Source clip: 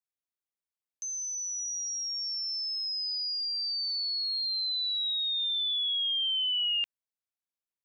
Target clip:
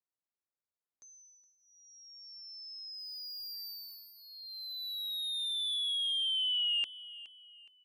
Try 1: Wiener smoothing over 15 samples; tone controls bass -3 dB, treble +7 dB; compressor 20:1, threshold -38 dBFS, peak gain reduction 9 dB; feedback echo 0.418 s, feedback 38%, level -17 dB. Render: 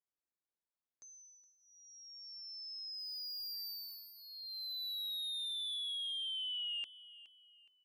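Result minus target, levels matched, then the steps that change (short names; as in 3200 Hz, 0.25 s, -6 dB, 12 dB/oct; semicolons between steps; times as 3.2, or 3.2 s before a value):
compressor: peak gain reduction +9 dB
remove: compressor 20:1, threshold -38 dBFS, peak gain reduction 9 dB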